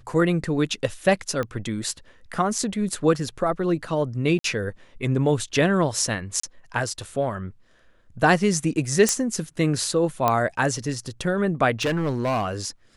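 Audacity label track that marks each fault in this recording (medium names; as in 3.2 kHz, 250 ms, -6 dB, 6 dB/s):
1.430000	1.430000	pop -16 dBFS
4.390000	4.440000	dropout 53 ms
6.400000	6.430000	dropout 34 ms
9.090000	9.090000	pop -5 dBFS
10.280000	10.280000	pop -7 dBFS
11.810000	12.480000	clipped -19.5 dBFS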